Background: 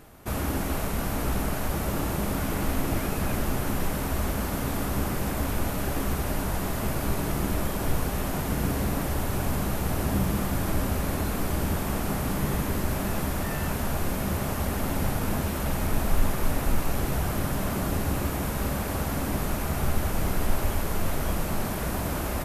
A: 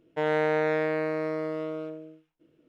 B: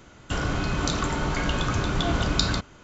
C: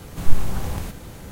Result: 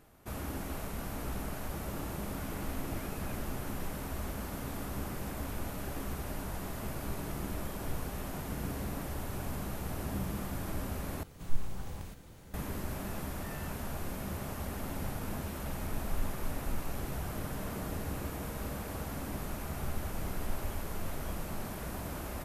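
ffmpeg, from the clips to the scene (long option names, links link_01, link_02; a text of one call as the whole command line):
ffmpeg -i bed.wav -i cue0.wav -i cue1.wav -i cue2.wav -filter_complex "[0:a]volume=-10.5dB[link_01];[1:a]acompressor=threshold=-29dB:ratio=6:attack=3.2:release=140:knee=1:detection=peak[link_02];[link_01]asplit=2[link_03][link_04];[link_03]atrim=end=11.234[link_05];[3:a]atrim=end=1.31,asetpts=PTS-STARTPTS,volume=-14.5dB[link_06];[link_04]atrim=start=12.536[link_07];[link_02]atrim=end=2.68,asetpts=PTS-STARTPTS,volume=-17.5dB,afade=type=in:duration=0.004:curve=hsin,afade=type=out:start_time=2.676:duration=0.004:curve=hsin,adelay=17190[link_08];[link_05][link_06]acrossfade=duration=0.004:curve1=hsin:curve2=hsin[link_09];[link_09][link_07]acrossfade=duration=0.004:curve1=hsin:curve2=hsin[link_10];[link_10][link_08]amix=inputs=2:normalize=0" out.wav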